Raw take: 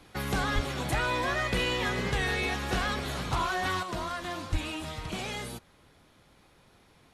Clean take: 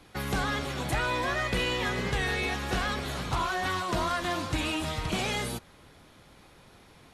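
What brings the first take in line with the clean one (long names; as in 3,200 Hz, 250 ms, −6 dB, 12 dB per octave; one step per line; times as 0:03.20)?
0:00.54–0:00.66: high-pass filter 140 Hz 24 dB per octave
0:04.51–0:04.63: high-pass filter 140 Hz 24 dB per octave
level 0 dB, from 0:03.83 +5.5 dB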